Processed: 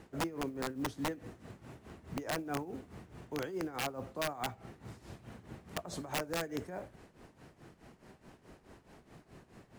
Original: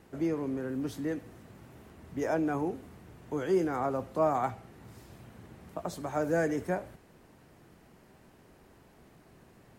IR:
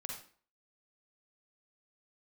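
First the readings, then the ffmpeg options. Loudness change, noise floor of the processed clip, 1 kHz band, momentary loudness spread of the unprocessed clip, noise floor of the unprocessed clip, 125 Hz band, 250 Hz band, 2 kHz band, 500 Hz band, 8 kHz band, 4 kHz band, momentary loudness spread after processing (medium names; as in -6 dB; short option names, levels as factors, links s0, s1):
-7.5 dB, -66 dBFS, -6.5 dB, 23 LU, -59 dBFS, -5.0 dB, -7.5 dB, -1.5 dB, -9.5 dB, +4.5 dB, +9.5 dB, 21 LU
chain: -af "lowpass=9500,acompressor=threshold=0.02:ratio=12,acrusher=bits=8:mode=log:mix=0:aa=0.000001,tremolo=f=4.7:d=0.79,aeval=exprs='(mod(37.6*val(0)+1,2)-1)/37.6':c=same,volume=1.58"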